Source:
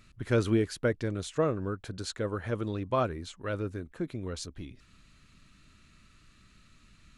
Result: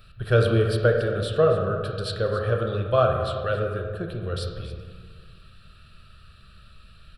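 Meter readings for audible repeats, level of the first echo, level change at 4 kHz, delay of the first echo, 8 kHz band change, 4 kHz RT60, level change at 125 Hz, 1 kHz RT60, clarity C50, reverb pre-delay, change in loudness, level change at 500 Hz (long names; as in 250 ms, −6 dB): 1, −15.5 dB, +7.5 dB, 276 ms, can't be measured, 0.90 s, +9.0 dB, 1.6 s, 4.0 dB, 20 ms, +8.0 dB, +9.5 dB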